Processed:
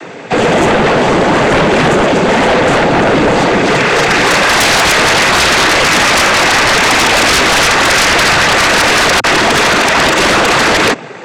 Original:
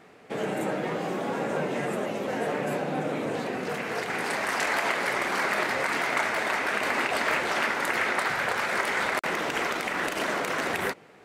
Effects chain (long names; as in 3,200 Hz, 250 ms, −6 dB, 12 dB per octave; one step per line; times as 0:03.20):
cochlear-implant simulation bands 16
sine wavefolder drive 15 dB, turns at −12.5 dBFS
level +6.5 dB